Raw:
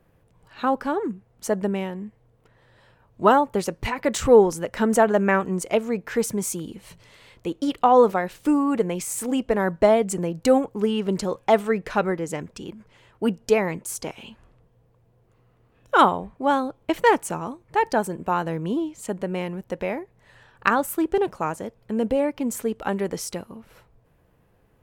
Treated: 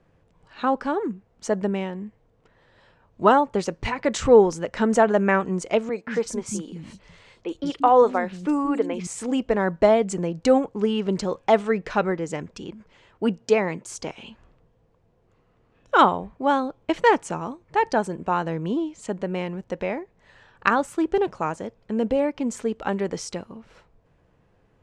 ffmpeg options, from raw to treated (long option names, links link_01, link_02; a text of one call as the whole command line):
ffmpeg -i in.wav -filter_complex "[0:a]asettb=1/sr,asplit=3[link_01][link_02][link_03];[link_01]atrim=end=5.894[link_04];[link_02]atrim=start=5.89:end=9.07,asetpts=PTS-STARTPTS,afade=type=in:duration=0.004:curve=qsin,afade=type=out:start_time=3.176:duration=0.004:curve=qsin,acrossover=split=240|3800[link_05][link_06][link_07];[link_07]adelay=40[link_08];[link_05]adelay=180[link_09];[link_09][link_06][link_08]amix=inputs=3:normalize=0,atrim=end_sample=140238[link_10];[link_03]atrim=start=9.066[link_11];[link_04][link_10]acrossfade=duration=0.004:curve1=hsin:curve2=qsin[link_12];[link_12][link_11]acrossfade=duration=0.004:curve1=qsin:curve2=hsin,asettb=1/sr,asplit=3[link_13][link_14][link_15];[link_13]atrim=end=13.404[link_16];[link_14]atrim=start=13.4:end=13.84,asetpts=PTS-STARTPTS,afade=type=in:duration=0.004:curve=qsin,afade=type=out:start_time=0.436:duration=0.004:curve=qsin,highpass=130[link_17];[link_15]atrim=start=13.836[link_18];[link_16][link_17]acrossfade=duration=0.004:curve1=hsin:curve2=qsin[link_19];[link_19][link_18]acrossfade=duration=0.004:curve1=qsin:curve2=hsin,lowpass=frequency=7400:width=0.5412,lowpass=frequency=7400:width=1.3066,bandreject=frequency=60:width_type=h:width=6,bandreject=frequency=120:width_type=h:width=6" out.wav